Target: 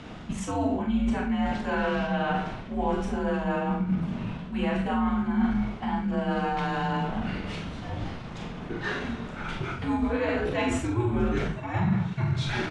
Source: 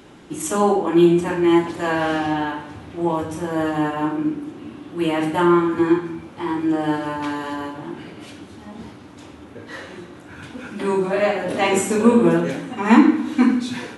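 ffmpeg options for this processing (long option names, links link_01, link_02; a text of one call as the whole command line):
ffmpeg -i in.wav -filter_complex "[0:a]lowpass=5000,atempo=1.1,areverse,acompressor=threshold=-29dB:ratio=5,areverse,bandreject=frequency=50:width_type=h:width=6,bandreject=frequency=100:width_type=h:width=6,bandreject=frequency=150:width_type=h:width=6,bandreject=frequency=200:width_type=h:width=6,bandreject=frequency=250:width_type=h:width=6,bandreject=frequency=300:width_type=h:width=6,afreqshift=-120,asplit=2[link_01][link_02];[link_02]adelay=43,volume=-6dB[link_03];[link_01][link_03]amix=inputs=2:normalize=0,volume=4dB" out.wav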